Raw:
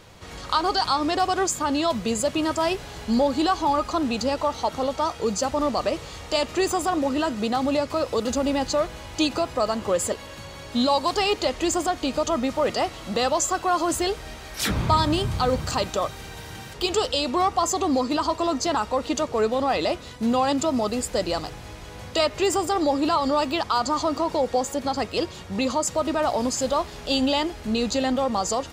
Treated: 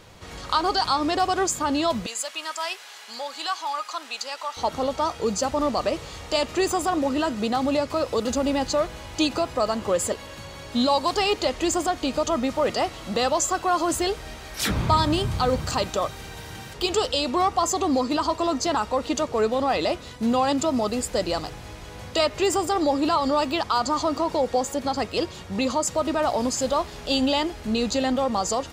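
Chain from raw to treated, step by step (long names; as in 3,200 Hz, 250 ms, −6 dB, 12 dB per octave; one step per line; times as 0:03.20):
0:02.06–0:04.57: high-pass filter 1,200 Hz 12 dB per octave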